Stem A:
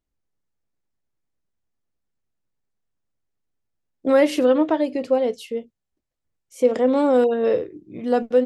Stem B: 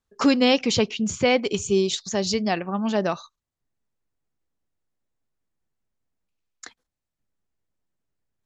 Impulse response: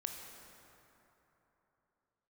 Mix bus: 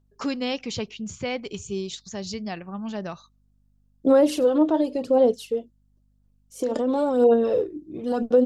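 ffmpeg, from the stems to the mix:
-filter_complex "[0:a]equalizer=f=2100:w=2.2:g=-14,alimiter=limit=0.188:level=0:latency=1:release=42,aphaser=in_gain=1:out_gain=1:delay=3.4:decay=0.48:speed=0.96:type=sinusoidal,volume=1[s0];[1:a]asubboost=boost=2.5:cutoff=220,aeval=exprs='val(0)+0.002*(sin(2*PI*50*n/s)+sin(2*PI*2*50*n/s)/2+sin(2*PI*3*50*n/s)/3+sin(2*PI*4*50*n/s)/4+sin(2*PI*5*50*n/s)/5)':c=same,volume=0.355[s1];[s0][s1]amix=inputs=2:normalize=0"

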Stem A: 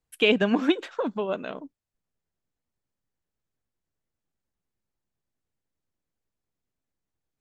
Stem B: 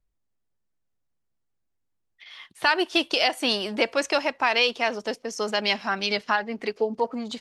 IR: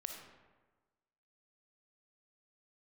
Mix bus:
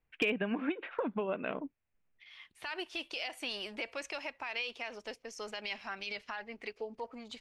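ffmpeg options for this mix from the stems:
-filter_complex "[0:a]acontrast=52,lowpass=f=2600:w=0.5412,lowpass=f=2600:w=1.3066,acompressor=threshold=0.0501:ratio=8,volume=0.562,asplit=2[s0][s1];[1:a]asubboost=boost=9.5:cutoff=57,alimiter=limit=0.133:level=0:latency=1:release=66,volume=0.224[s2];[s1]apad=whole_len=326422[s3];[s2][s3]sidechaincompress=threshold=0.00355:ratio=8:attack=22:release=664[s4];[s0][s4]amix=inputs=2:normalize=0,equalizer=f=2400:w=2:g=7.5,asoftclip=type=hard:threshold=0.0841"

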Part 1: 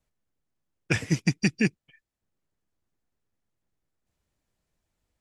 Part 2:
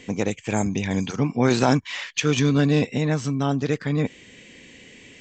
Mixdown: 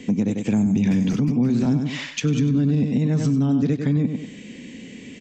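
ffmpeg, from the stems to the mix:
-filter_complex "[0:a]lowpass=6700,asoftclip=type=hard:threshold=0.1,volume=0.891[s0];[1:a]equalizer=f=220:t=o:w=1.1:g=13.5,volume=1.19,asplit=2[s1][s2];[s2]volume=0.376,aecho=0:1:96|192|288|384:1|0.25|0.0625|0.0156[s3];[s0][s1][s3]amix=inputs=3:normalize=0,acrossover=split=240[s4][s5];[s5]acompressor=threshold=0.0794:ratio=6[s6];[s4][s6]amix=inputs=2:normalize=0,equalizer=f=1300:t=o:w=1.5:g=-2.5,alimiter=limit=0.237:level=0:latency=1:release=176"

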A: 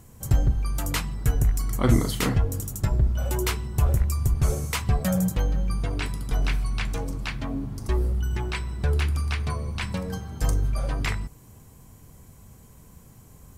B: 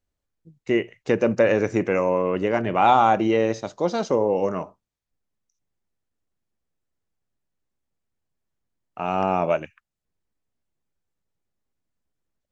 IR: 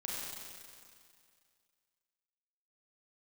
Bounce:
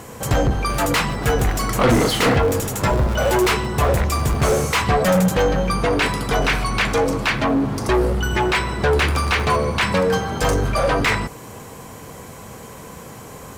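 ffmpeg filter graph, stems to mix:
-filter_complex "[0:a]equalizer=f=490:w=3.8:g=4.5,asplit=2[s0][s1];[s1]highpass=f=720:p=1,volume=31.6,asoftclip=type=tanh:threshold=0.447[s2];[s0][s2]amix=inputs=2:normalize=0,lowpass=f=2400:p=1,volume=0.501,volume=1[s3];[1:a]alimiter=limit=0.237:level=0:latency=1,aeval=exprs='val(0)*sgn(sin(2*PI*220*n/s))':c=same,volume=0.316[s4];[s3][s4]amix=inputs=2:normalize=0"

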